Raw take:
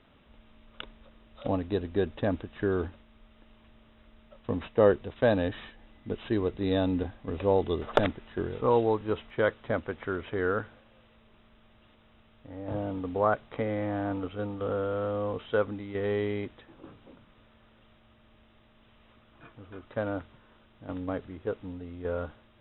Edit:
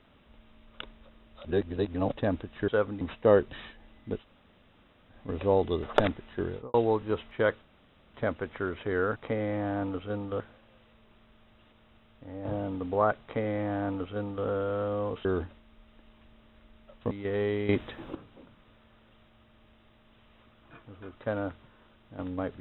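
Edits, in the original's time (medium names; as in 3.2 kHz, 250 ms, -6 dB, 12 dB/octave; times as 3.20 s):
1.45–2.12 s: reverse
2.68–4.54 s: swap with 15.48–15.81 s
5.05–5.51 s: delete
6.19–7.13 s: room tone, crossfade 0.10 s
8.48–8.73 s: studio fade out
9.61 s: insert room tone 0.52 s
13.45–14.69 s: copy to 10.63 s
16.39–16.85 s: gain +10.5 dB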